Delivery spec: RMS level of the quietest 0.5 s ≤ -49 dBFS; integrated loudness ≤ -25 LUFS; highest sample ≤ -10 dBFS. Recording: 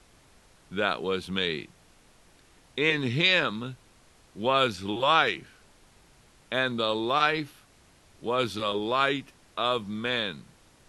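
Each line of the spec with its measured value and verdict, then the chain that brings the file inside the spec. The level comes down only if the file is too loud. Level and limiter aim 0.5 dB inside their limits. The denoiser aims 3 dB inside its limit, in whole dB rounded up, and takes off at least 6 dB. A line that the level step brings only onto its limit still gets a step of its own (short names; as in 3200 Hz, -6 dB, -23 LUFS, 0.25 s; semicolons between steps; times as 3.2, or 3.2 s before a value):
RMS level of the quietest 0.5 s -59 dBFS: OK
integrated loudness -27.0 LUFS: OK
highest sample -7.5 dBFS: fail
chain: limiter -10.5 dBFS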